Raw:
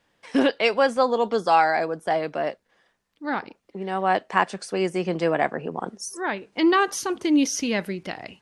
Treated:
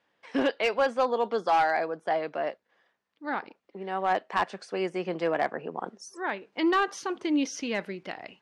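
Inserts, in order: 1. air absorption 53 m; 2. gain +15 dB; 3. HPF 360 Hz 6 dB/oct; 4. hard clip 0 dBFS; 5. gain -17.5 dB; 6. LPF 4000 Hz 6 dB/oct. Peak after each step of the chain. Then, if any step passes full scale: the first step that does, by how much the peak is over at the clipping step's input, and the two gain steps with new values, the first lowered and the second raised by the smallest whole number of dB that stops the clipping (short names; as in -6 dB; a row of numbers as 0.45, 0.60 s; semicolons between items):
-5.0, +10.0, +8.5, 0.0, -17.5, -17.5 dBFS; step 2, 8.5 dB; step 2 +6 dB, step 5 -8.5 dB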